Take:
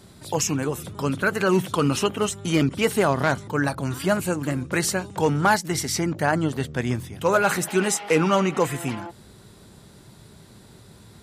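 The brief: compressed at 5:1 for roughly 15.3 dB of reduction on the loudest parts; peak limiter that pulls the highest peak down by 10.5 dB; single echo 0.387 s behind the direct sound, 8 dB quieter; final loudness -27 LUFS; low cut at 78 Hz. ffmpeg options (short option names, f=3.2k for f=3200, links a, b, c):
-af "highpass=78,acompressor=threshold=-33dB:ratio=5,alimiter=level_in=5.5dB:limit=-24dB:level=0:latency=1,volume=-5.5dB,aecho=1:1:387:0.398,volume=12.5dB"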